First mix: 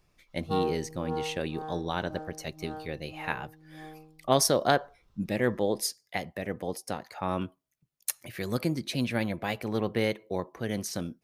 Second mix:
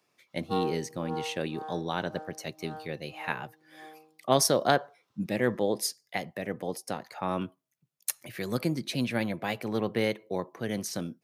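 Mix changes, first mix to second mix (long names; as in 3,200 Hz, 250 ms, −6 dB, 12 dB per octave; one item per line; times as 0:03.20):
background: add high-pass filter 460 Hz 12 dB per octave
master: add high-pass filter 110 Hz 24 dB per octave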